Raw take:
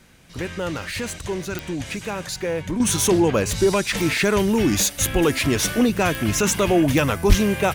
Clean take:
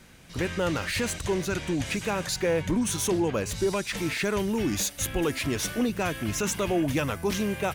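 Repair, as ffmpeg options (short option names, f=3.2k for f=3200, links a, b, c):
-filter_complex "[0:a]adeclick=t=4,asplit=3[a][b][c];[a]afade=t=out:st=7.28:d=0.02[d];[b]highpass=f=140:w=0.5412,highpass=f=140:w=1.3066,afade=t=in:st=7.28:d=0.02,afade=t=out:st=7.4:d=0.02[e];[c]afade=t=in:st=7.4:d=0.02[f];[d][e][f]amix=inputs=3:normalize=0,asetnsamples=n=441:p=0,asendcmd='2.8 volume volume -8dB',volume=0dB"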